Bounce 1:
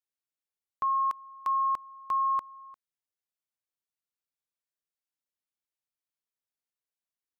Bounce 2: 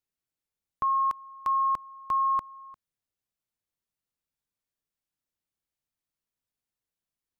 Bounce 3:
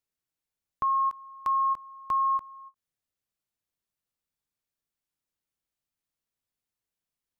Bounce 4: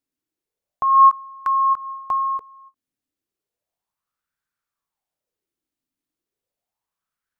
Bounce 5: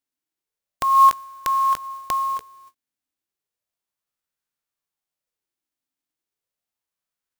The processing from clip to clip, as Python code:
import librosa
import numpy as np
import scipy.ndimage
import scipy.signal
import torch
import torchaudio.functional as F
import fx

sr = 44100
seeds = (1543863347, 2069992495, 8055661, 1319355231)

y1 = fx.low_shelf(x, sr, hz=280.0, db=11.5)
y1 = F.gain(torch.from_numpy(y1), 1.0).numpy()
y2 = fx.end_taper(y1, sr, db_per_s=540.0)
y3 = fx.bell_lfo(y2, sr, hz=0.34, low_hz=270.0, high_hz=1500.0, db=16)
y4 = fx.envelope_flatten(y3, sr, power=0.3)
y4 = F.gain(torch.from_numpy(y4), -1.5).numpy()